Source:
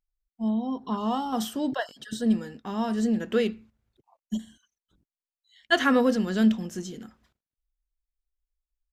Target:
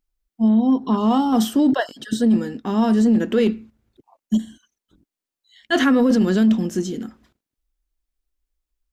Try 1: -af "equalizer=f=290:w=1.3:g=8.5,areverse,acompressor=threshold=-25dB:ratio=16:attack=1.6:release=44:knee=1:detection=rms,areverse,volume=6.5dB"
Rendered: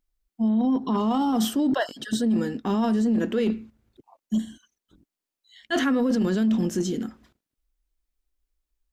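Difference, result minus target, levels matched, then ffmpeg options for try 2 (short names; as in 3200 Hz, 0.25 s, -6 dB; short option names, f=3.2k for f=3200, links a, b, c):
compressor: peak gain reduction +6.5 dB
-af "equalizer=f=290:w=1.3:g=8.5,areverse,acompressor=threshold=-18dB:ratio=16:attack=1.6:release=44:knee=1:detection=rms,areverse,volume=6.5dB"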